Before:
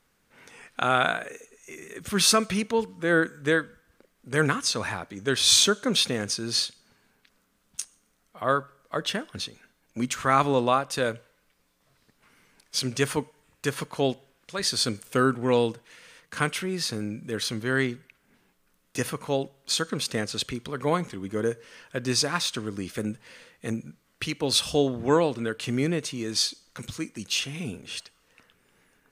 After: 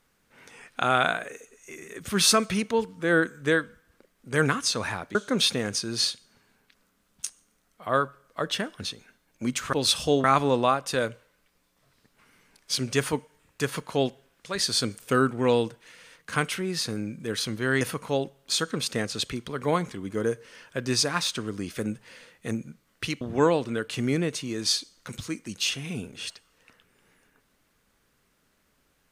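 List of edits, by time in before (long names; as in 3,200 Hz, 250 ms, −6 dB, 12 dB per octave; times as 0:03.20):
0:05.15–0:05.70: remove
0:17.85–0:19.00: remove
0:24.40–0:24.91: move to 0:10.28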